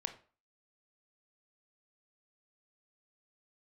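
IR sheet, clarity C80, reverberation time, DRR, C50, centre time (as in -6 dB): 17.0 dB, 0.40 s, 7.5 dB, 12.5 dB, 8 ms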